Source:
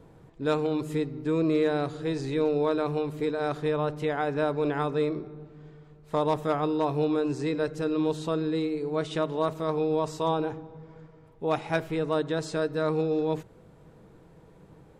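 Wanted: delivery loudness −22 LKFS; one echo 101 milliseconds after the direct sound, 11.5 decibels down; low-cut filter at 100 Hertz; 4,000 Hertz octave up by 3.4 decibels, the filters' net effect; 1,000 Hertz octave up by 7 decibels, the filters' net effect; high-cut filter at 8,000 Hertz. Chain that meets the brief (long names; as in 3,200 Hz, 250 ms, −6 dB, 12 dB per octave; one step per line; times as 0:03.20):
high-pass filter 100 Hz
low-pass filter 8,000 Hz
parametric band 1,000 Hz +8.5 dB
parametric band 4,000 Hz +3.5 dB
single-tap delay 101 ms −11.5 dB
level +3.5 dB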